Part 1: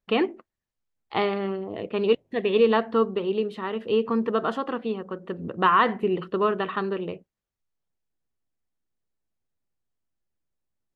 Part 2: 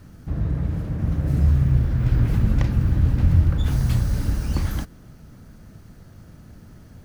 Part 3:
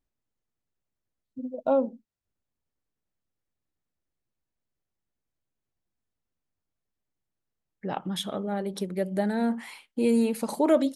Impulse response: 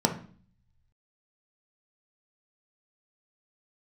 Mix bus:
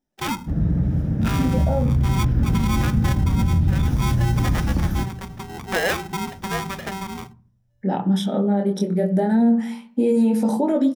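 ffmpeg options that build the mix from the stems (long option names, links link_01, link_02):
-filter_complex "[0:a]aeval=exprs='val(0)*sgn(sin(2*PI*580*n/s))':channel_layout=same,adelay=100,volume=-4.5dB,asplit=2[link_01][link_02];[link_02]volume=-24dB[link_03];[1:a]equalizer=frequency=99:width=0.67:gain=9.5,adelay=200,volume=-4.5dB,asplit=2[link_04][link_05];[link_05]volume=-16dB[link_06];[2:a]flanger=delay=19:depth=6.9:speed=0.19,alimiter=limit=-21dB:level=0:latency=1:release=85,volume=0dB,asplit=2[link_07][link_08];[link_08]volume=-7dB[link_09];[3:a]atrim=start_sample=2205[link_10];[link_03][link_06][link_09]amix=inputs=3:normalize=0[link_11];[link_11][link_10]afir=irnorm=-1:irlink=0[link_12];[link_01][link_04][link_07][link_12]amix=inputs=4:normalize=0,alimiter=limit=-11dB:level=0:latency=1:release=75"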